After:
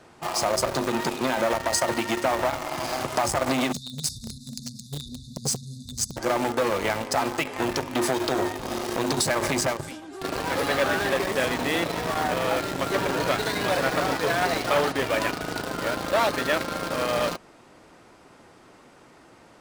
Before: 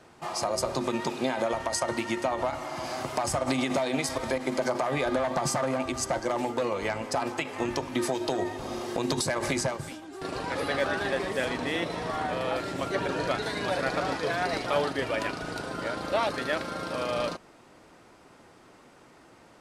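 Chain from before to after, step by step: spectral selection erased 3.72–6.17 s, 250–3500 Hz; in parallel at -5 dB: bit crusher 5-bit; on the sum: transformer saturation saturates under 1.3 kHz; trim +2.5 dB

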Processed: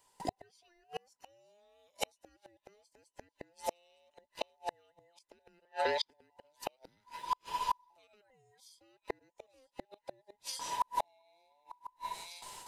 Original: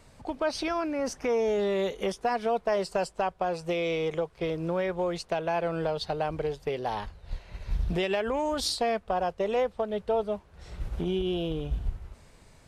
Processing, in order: every band turned upside down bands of 1 kHz; pre-emphasis filter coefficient 0.8; gate with hold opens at -53 dBFS; 5.65–6.06 s: three-band isolator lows -17 dB, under 520 Hz, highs -23 dB, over 5 kHz; feedback echo behind a high-pass 912 ms, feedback 47%, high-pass 2.2 kHz, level -17 dB; inverted gate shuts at -35 dBFS, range -42 dB; trim +15.5 dB

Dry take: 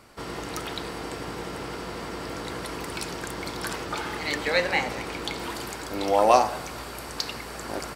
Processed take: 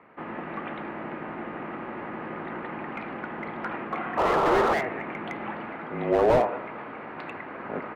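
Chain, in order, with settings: mistuned SSB -130 Hz 320–2500 Hz; painted sound noise, 4.17–4.74 s, 320–1400 Hz -22 dBFS; slew-rate limiter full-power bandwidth 82 Hz; trim +1 dB

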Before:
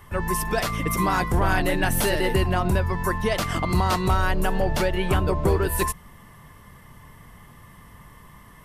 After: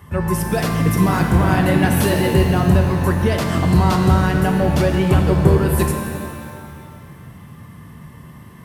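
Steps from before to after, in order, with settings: high-pass 79 Hz; peaking EQ 120 Hz +11.5 dB 2.7 oct; pitch-shifted reverb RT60 2.2 s, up +7 st, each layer -8 dB, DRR 3.5 dB

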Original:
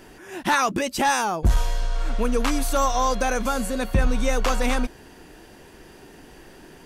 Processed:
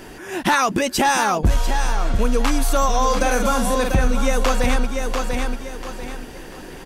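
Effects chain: 3.02–3.96 s: doubling 48 ms -5.5 dB; on a send: feedback delay 692 ms, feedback 30%, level -8.5 dB; on the sum: compression 2:1, threshold -26 dBFS, peak gain reduction 7 dB; trim +8 dB

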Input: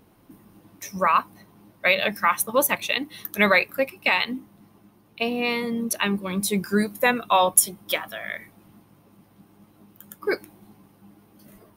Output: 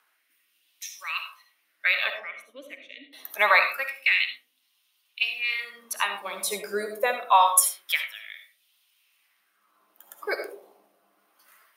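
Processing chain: high-pass 210 Hz 6 dB/octave; rotary cabinet horn 0.75 Hz; 2.10–3.13 s: vowel filter i; algorithmic reverb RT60 0.52 s, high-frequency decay 0.3×, pre-delay 30 ms, DRR 6 dB; LFO high-pass sine 0.26 Hz 580–3300 Hz; trim -1.5 dB

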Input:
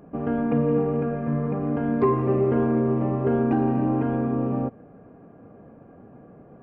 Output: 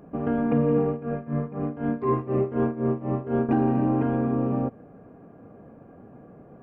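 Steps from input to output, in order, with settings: 0.88–3.49 s: tremolo 4 Hz, depth 84%

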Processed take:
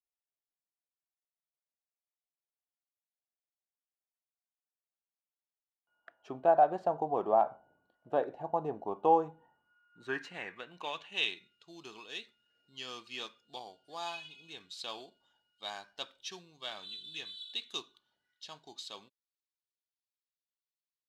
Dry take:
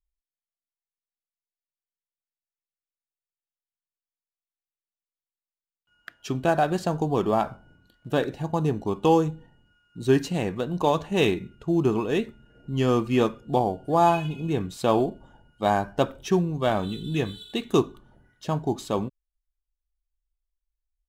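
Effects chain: band-pass sweep 720 Hz -> 4.1 kHz, 9.09–11.56 s

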